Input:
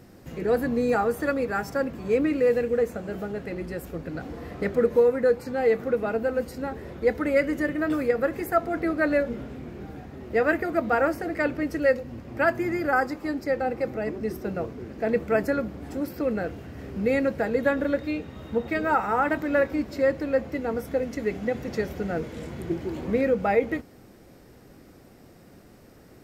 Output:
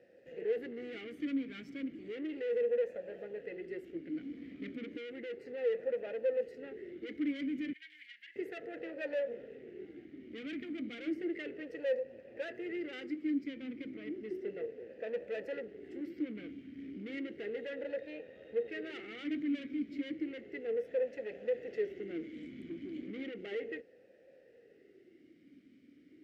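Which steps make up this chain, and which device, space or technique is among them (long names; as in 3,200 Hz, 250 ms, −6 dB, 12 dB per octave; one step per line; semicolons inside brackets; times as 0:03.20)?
talk box (tube saturation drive 29 dB, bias 0.6; formant filter swept between two vowels e-i 0.33 Hz)
0:07.73–0:08.36: elliptic high-pass filter 1,700 Hz, stop band 40 dB
level +3.5 dB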